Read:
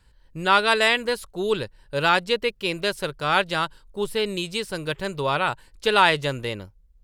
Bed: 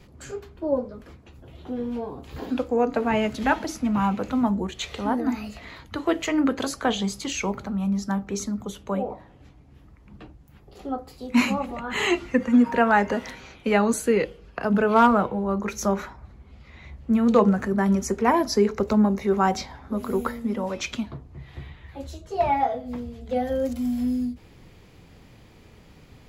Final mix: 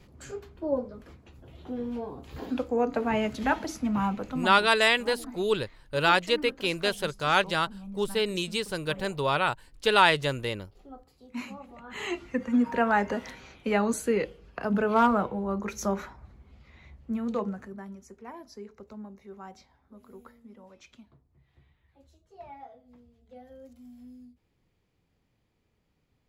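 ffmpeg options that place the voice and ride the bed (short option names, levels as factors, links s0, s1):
-filter_complex "[0:a]adelay=4000,volume=0.75[s0];[1:a]volume=2.51,afade=t=out:st=3.98:d=0.72:silence=0.223872,afade=t=in:st=11.64:d=1.19:silence=0.251189,afade=t=out:st=16.26:d=1.68:silence=0.11885[s1];[s0][s1]amix=inputs=2:normalize=0"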